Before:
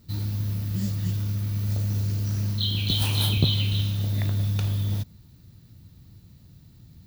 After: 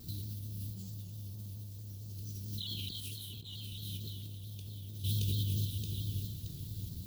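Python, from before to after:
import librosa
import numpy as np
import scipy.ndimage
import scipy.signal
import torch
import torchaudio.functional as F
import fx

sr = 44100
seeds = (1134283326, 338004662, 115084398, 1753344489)

p1 = scipy.signal.sosfilt(scipy.signal.ellip(3, 1.0, 40, [420.0, 3100.0], 'bandstop', fs=sr, output='sos'), x)
p2 = fx.peak_eq(p1, sr, hz=11000.0, db=2.5, octaves=0.94)
p3 = p2 + fx.echo_feedback(p2, sr, ms=623, feedback_pct=44, wet_db=-12, dry=0)
p4 = fx.over_compress(p3, sr, threshold_db=-37.0, ratio=-1.0)
p5 = np.sign(p4) * np.maximum(np.abs(p4) - 10.0 ** (-50.0 / 20.0), 0.0)
p6 = p4 + (p5 * librosa.db_to_amplitude(-9.5))
p7 = fx.high_shelf(p6, sr, hz=3900.0, db=6.5)
p8 = np.sign(p7) * np.maximum(np.abs(p7) - 10.0 ** (-57.5 / 20.0), 0.0)
p9 = fx.vibrato_shape(p8, sr, shape='saw_down', rate_hz=4.5, depth_cents=100.0)
y = p9 * librosa.db_to_amplitude(-5.5)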